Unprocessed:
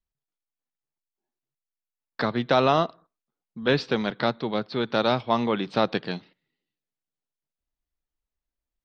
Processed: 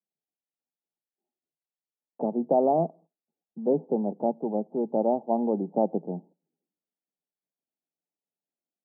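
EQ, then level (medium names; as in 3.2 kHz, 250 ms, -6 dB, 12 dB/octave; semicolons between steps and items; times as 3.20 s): Chebyshev band-pass 160–850 Hz, order 5; 0.0 dB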